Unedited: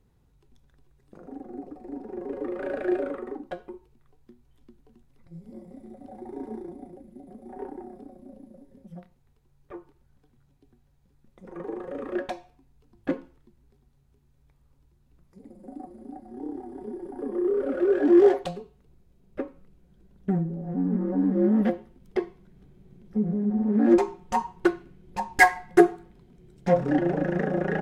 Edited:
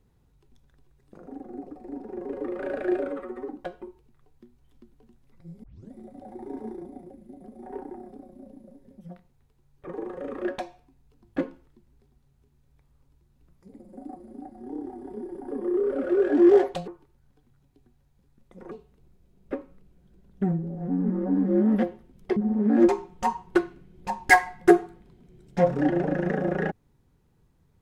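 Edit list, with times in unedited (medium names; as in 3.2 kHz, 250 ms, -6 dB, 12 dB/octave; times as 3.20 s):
3.08–3.35 s: stretch 1.5×
5.50 s: tape start 0.29 s
9.74–11.58 s: move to 18.58 s
22.23–23.46 s: delete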